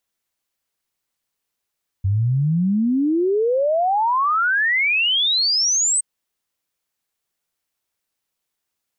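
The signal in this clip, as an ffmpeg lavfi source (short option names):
-f lavfi -i "aevalsrc='0.168*clip(min(t,3.97-t)/0.01,0,1)*sin(2*PI*93*3.97/log(8400/93)*(exp(log(8400/93)*t/3.97)-1))':d=3.97:s=44100"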